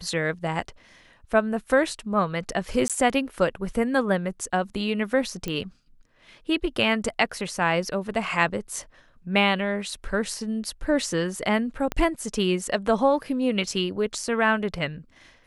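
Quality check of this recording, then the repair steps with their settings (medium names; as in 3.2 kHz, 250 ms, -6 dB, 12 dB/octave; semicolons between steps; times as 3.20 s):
2.88–2.90 s: dropout 17 ms
5.48 s: pop -15 dBFS
11.92 s: pop -13 dBFS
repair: de-click; interpolate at 2.88 s, 17 ms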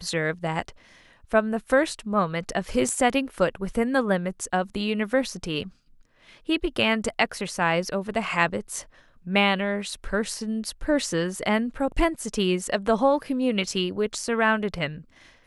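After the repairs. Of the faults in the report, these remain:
11.92 s: pop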